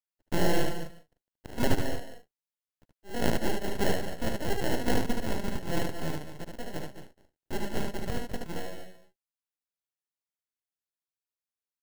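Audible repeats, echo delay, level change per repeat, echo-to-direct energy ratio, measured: 3, 74 ms, no steady repeat, -2.5 dB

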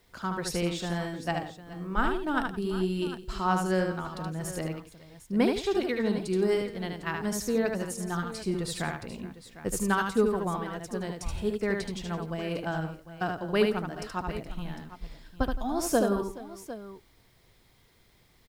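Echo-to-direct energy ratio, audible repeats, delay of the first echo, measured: -3.5 dB, 4, 75 ms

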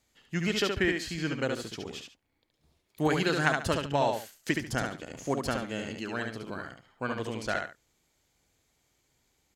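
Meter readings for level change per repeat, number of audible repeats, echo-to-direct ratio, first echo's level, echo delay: -12.0 dB, 2, -4.0 dB, -4.5 dB, 71 ms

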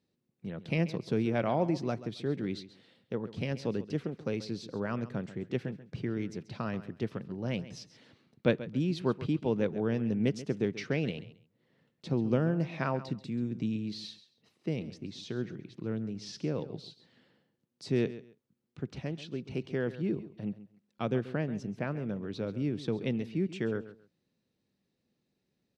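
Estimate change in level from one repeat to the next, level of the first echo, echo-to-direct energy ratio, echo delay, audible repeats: -14.0 dB, -15.0 dB, -15.0 dB, 0.135 s, 2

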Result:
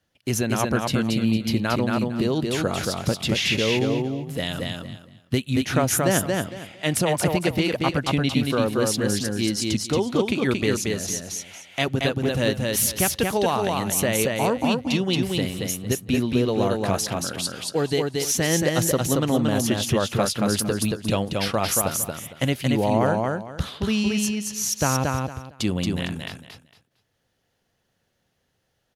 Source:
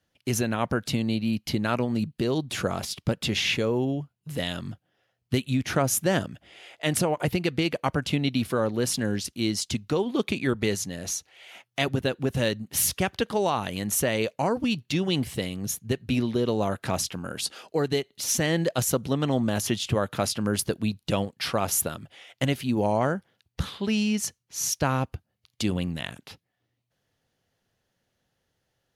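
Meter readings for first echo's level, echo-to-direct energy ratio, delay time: -3.0 dB, -3.0 dB, 0.228 s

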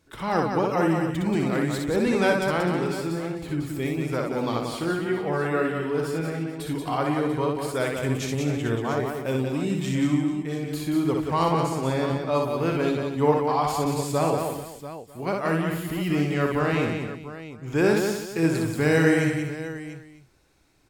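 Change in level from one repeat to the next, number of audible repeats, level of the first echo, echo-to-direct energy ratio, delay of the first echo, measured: no steady repeat, 7, -3.5 dB, -0.5 dB, 61 ms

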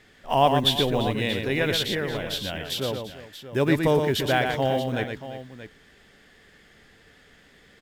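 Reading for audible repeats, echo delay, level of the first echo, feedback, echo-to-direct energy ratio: 3, 0.118 s, -5.5 dB, no steady repeat, -4.5 dB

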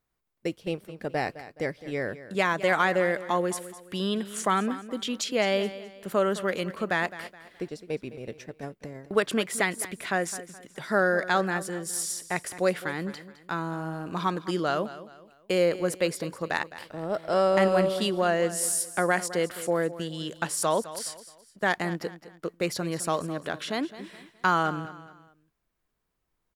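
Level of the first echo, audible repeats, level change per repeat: -15.0 dB, 3, -9.0 dB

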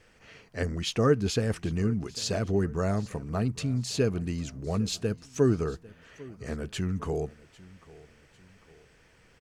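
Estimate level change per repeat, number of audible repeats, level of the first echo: -6.5 dB, 2, -21.0 dB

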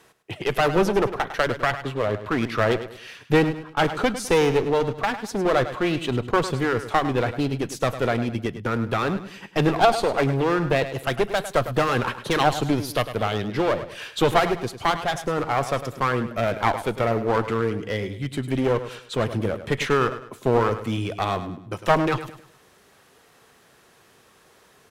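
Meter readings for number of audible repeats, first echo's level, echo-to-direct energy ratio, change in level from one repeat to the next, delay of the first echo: 3, -12.0 dB, -11.5 dB, -9.0 dB, 0.103 s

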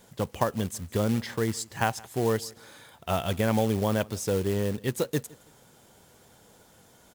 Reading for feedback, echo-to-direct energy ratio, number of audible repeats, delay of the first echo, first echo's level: 33%, -23.0 dB, 2, 0.164 s, -23.5 dB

